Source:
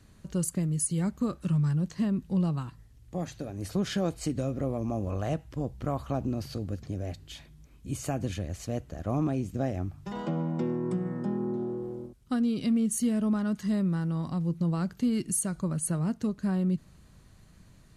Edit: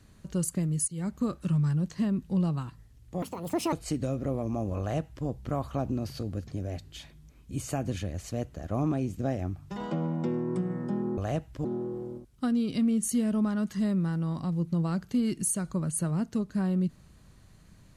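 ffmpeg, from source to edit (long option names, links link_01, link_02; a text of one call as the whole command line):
ffmpeg -i in.wav -filter_complex "[0:a]asplit=6[link_01][link_02][link_03][link_04][link_05][link_06];[link_01]atrim=end=0.88,asetpts=PTS-STARTPTS,afade=type=out:start_time=0.876:duration=0.004:curve=hsin:silence=0.177828[link_07];[link_02]atrim=start=0.88:end=3.224,asetpts=PTS-STARTPTS,afade=type=in:duration=0.28:silence=0.177828[link_08];[link_03]atrim=start=3.22:end=4.08,asetpts=PTS-STARTPTS,asetrate=74970,aresample=44100,atrim=end_sample=22309,asetpts=PTS-STARTPTS[link_09];[link_04]atrim=start=4.076:end=11.532[link_10];[link_05]atrim=start=5.148:end=5.622[link_11];[link_06]atrim=start=11.528[link_12];[link_07][link_08]concat=n=2:v=0:a=1[link_13];[link_13][link_09]acrossfade=duration=0.004:curve1=hsin:curve2=hsin[link_14];[link_14][link_10]acrossfade=duration=0.004:curve1=hsin:curve2=hsin[link_15];[link_15][link_11]acrossfade=duration=0.004:curve1=hsin:curve2=hsin[link_16];[link_16][link_12]acrossfade=duration=0.004:curve1=hsin:curve2=hsin" out.wav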